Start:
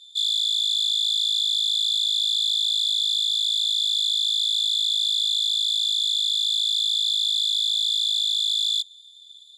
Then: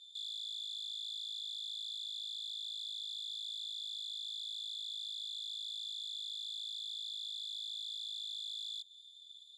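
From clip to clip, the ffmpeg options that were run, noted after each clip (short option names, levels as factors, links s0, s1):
-af "highshelf=f=5100:g=-6.5,acompressor=threshold=0.0282:ratio=6,alimiter=level_in=2:limit=0.0631:level=0:latency=1:release=34,volume=0.501,volume=0.501"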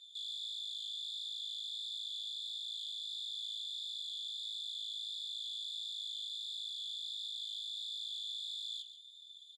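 -filter_complex "[0:a]flanger=delay=5.1:depth=6.6:regen=-50:speed=1.5:shape=sinusoidal,asplit=2[s0][s1];[s1]adelay=139.9,volume=0.355,highshelf=f=4000:g=-3.15[s2];[s0][s2]amix=inputs=2:normalize=0,volume=1.58"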